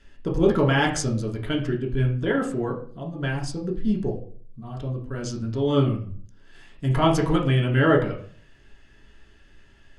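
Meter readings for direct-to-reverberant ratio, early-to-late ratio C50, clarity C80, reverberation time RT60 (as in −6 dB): −2.0 dB, 8.5 dB, 13.0 dB, 0.50 s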